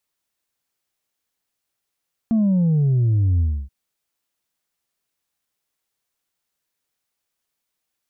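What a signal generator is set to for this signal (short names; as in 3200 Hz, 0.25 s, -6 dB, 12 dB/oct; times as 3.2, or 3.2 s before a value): sub drop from 230 Hz, over 1.38 s, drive 2 dB, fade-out 0.29 s, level -15 dB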